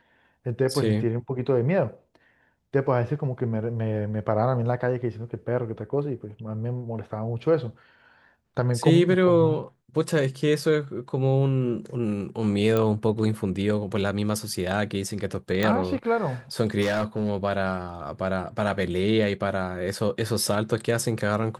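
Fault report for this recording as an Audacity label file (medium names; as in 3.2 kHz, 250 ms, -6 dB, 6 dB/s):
12.770000	12.770000	pop -12 dBFS
15.630000	15.630000	pop -11 dBFS
16.810000	17.300000	clipped -20 dBFS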